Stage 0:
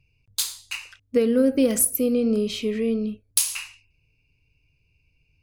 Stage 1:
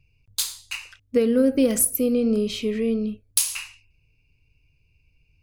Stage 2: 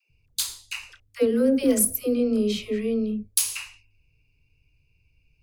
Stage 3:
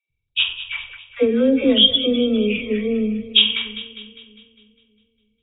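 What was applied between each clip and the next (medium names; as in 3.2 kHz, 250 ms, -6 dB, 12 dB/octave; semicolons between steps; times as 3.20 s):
bass shelf 74 Hz +6 dB
phase dispersion lows, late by 104 ms, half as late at 450 Hz; trim -1.5 dB
knee-point frequency compression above 2.2 kHz 4:1; gate -48 dBFS, range -17 dB; two-band feedback delay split 450 Hz, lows 308 ms, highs 202 ms, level -13.5 dB; trim +4 dB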